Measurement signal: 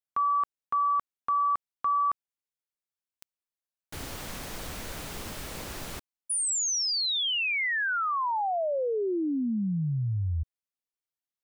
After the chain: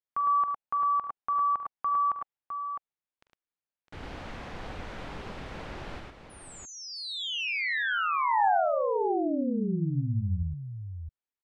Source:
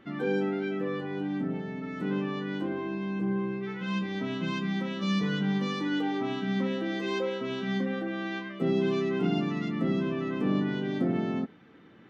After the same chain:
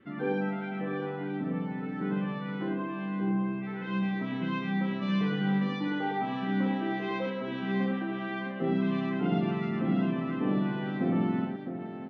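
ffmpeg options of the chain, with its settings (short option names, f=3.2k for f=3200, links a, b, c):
-af "lowpass=2.7k,adynamicequalizer=threshold=0.00355:dfrequency=800:dqfactor=3.3:tfrequency=800:tqfactor=3.3:attack=5:release=100:ratio=0.375:range=3.5:mode=boostabove:tftype=bell,aecho=1:1:43|45|73|108|658:0.112|0.237|0.211|0.668|0.422,volume=-2.5dB"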